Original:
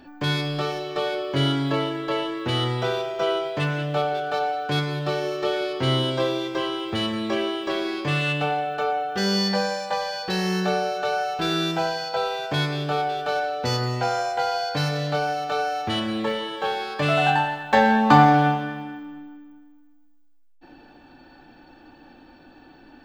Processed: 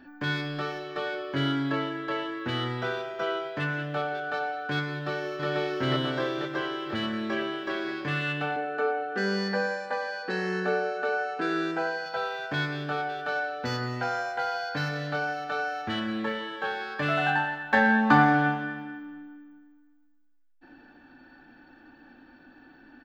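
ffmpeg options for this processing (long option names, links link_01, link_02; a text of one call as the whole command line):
ffmpeg -i in.wav -filter_complex "[0:a]asplit=2[link_01][link_02];[link_02]afade=type=in:start_time=4.9:duration=0.01,afade=type=out:start_time=5.47:duration=0.01,aecho=0:1:490|980|1470|1960|2450|2940|3430|3920|4410|4900|5390:0.891251|0.579313|0.376554|0.24476|0.159094|0.103411|0.0672172|0.0436912|0.0283992|0.0184595|0.0119987[link_03];[link_01][link_03]amix=inputs=2:normalize=0,asettb=1/sr,asplit=3[link_04][link_05][link_06];[link_04]atrim=end=8.564[link_07];[link_05]atrim=start=8.56:end=12.06,asetpts=PTS-STARTPTS,afade=type=in:duration=0.004:curve=qsin,afade=type=out:start_time=3.496:duration=0.004:curve=qsin,highpass=frequency=160:width=0.5412,highpass=frequency=160:width=1.3066,equalizer=frequency=170:width_type=q:width=4:gain=-5,equalizer=frequency=260:width_type=q:width=4:gain=8,equalizer=frequency=450:width_type=q:width=4:gain=8,equalizer=frequency=3400:width_type=q:width=4:gain=-8,equalizer=frequency=5600:width_type=q:width=4:gain=-6,lowpass=frequency=9900:width=0.5412,lowpass=frequency=9900:width=1.3066[link_08];[link_06]atrim=start=12.056[link_09];[link_07][link_08]acrossfade=duration=0.004:curve1=hsin:curve2=qsin[link_10];[link_10][link_09]acrossfade=duration=0.004:curve1=qsin:curve2=hsin,equalizer=frequency=250:width_type=o:width=0.67:gain=7,equalizer=frequency=1600:width_type=o:width=0.67:gain=11,equalizer=frequency=10000:width_type=o:width=0.67:gain=-10,volume=-8.5dB" out.wav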